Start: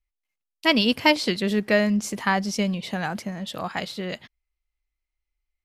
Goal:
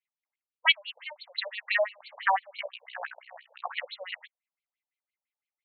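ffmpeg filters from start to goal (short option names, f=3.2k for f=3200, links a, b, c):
-filter_complex "[0:a]equalizer=f=210:w=3.6:g=-8.5,asettb=1/sr,asplit=3[a][b][c];[a]atrim=end=0.724[d];[b]atrim=start=0.72:end=1.35,asetpts=PTS-STARTPTS,afade=t=in:d=0.004:c=qsin,afade=t=out:st=0.626:d=0.004:c=qsin,acompressor=threshold=-33dB:ratio=12[e];[c]atrim=start=1.346[f];[d][e]acrossfade=d=0.004:c1=hsin:c2=qsin[g];[g][f]acrossfade=d=0.004:c1=qsin:c2=hsin,asplit=3[h][i][j];[h]afade=t=out:st=2.58:d=0.02[k];[i]tremolo=f=61:d=0.857,afade=t=in:st=2.58:d=0.02,afade=t=out:st=3.68:d=0.02[l];[j]afade=t=in:st=3.68:d=0.02[m];[k][l][m]amix=inputs=3:normalize=0,afftfilt=real='re*between(b*sr/1024,650*pow(3200/650,0.5+0.5*sin(2*PI*5.9*pts/sr))/1.41,650*pow(3200/650,0.5+0.5*sin(2*PI*5.9*pts/sr))*1.41)':imag='im*between(b*sr/1024,650*pow(3200/650,0.5+0.5*sin(2*PI*5.9*pts/sr))/1.41,650*pow(3200/650,0.5+0.5*sin(2*PI*5.9*pts/sr))*1.41)':win_size=1024:overlap=0.75,volume=2.5dB"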